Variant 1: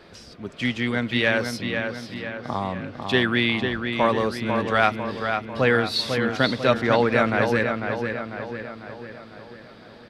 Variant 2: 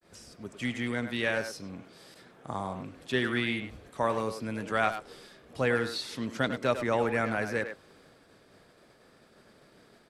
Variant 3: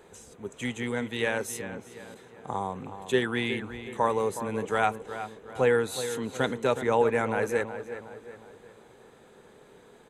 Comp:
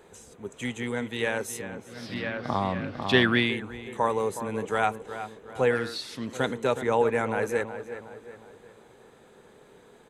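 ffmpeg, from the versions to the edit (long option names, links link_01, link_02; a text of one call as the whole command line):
ffmpeg -i take0.wav -i take1.wav -i take2.wav -filter_complex "[2:a]asplit=3[link_01][link_02][link_03];[link_01]atrim=end=2.11[link_04];[0:a]atrim=start=1.87:end=3.56[link_05];[link_02]atrim=start=3.32:end=5.712[link_06];[1:a]atrim=start=5.708:end=6.332[link_07];[link_03]atrim=start=6.328[link_08];[link_04][link_05]acrossfade=duration=0.24:curve1=tri:curve2=tri[link_09];[link_09][link_06]acrossfade=duration=0.24:curve1=tri:curve2=tri[link_10];[link_10][link_07]acrossfade=duration=0.004:curve1=hsin:curve2=hsin[link_11];[link_11][link_08]acrossfade=duration=0.004:curve1=hsin:curve2=hsin" out.wav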